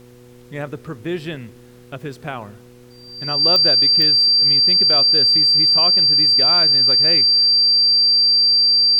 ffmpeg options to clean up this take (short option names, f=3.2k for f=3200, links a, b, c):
-af "adeclick=t=4,bandreject=f=122.4:t=h:w=4,bandreject=f=244.8:t=h:w=4,bandreject=f=367.2:t=h:w=4,bandreject=f=489.6:t=h:w=4,bandreject=f=4.7k:w=30,agate=range=-21dB:threshold=-36dB"